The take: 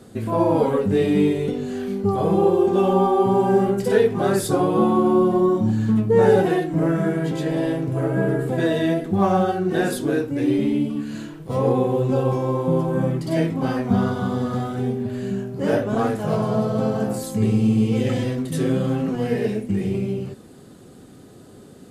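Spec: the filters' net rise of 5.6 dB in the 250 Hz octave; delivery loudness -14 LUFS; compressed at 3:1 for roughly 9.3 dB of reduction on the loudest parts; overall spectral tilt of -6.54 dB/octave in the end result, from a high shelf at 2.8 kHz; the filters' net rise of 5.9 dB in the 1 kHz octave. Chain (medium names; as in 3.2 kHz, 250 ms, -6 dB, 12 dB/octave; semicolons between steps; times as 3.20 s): peaking EQ 250 Hz +7 dB; peaking EQ 1 kHz +8 dB; treble shelf 2.8 kHz -5 dB; compression 3:1, threshold -21 dBFS; trim +9 dB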